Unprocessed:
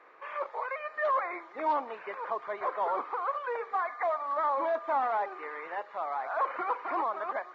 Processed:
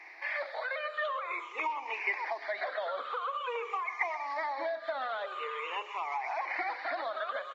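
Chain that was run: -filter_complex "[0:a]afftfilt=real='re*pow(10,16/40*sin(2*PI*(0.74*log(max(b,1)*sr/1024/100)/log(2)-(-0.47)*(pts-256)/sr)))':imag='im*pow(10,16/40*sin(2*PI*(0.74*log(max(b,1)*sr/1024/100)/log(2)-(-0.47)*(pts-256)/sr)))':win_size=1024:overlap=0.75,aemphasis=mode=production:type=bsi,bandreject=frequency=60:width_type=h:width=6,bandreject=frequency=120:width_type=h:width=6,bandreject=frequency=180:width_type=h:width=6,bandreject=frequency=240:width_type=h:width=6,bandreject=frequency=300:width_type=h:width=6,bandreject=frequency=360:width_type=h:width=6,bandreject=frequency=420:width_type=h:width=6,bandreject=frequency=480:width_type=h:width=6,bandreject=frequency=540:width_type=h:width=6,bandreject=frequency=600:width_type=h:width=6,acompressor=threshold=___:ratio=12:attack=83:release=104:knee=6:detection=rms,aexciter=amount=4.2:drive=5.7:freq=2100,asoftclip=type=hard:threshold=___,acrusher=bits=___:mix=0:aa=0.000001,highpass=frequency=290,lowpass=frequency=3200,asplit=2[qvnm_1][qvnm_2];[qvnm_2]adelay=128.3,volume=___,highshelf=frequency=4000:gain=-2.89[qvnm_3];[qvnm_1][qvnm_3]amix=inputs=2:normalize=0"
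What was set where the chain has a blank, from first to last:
-35dB, -20.5dB, 11, -16dB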